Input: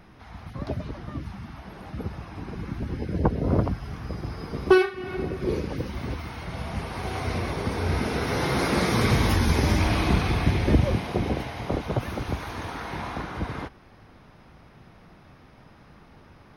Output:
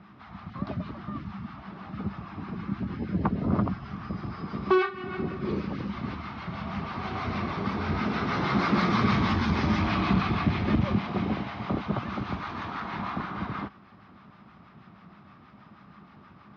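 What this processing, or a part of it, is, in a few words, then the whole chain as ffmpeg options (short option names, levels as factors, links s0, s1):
guitar amplifier with harmonic tremolo: -filter_complex "[0:a]acrossover=split=740[s0][s1];[s0]aeval=exprs='val(0)*(1-0.5/2+0.5/2*cos(2*PI*6.3*n/s))':c=same[s2];[s1]aeval=exprs='val(0)*(1-0.5/2-0.5/2*cos(2*PI*6.3*n/s))':c=same[s3];[s2][s3]amix=inputs=2:normalize=0,asoftclip=type=tanh:threshold=0.178,highpass=94,equalizer=f=200:t=q:w=4:g=9,equalizer=f=490:t=q:w=4:g=-8,equalizer=f=1200:t=q:w=4:g=9,lowpass=f=4500:w=0.5412,lowpass=f=4500:w=1.3066"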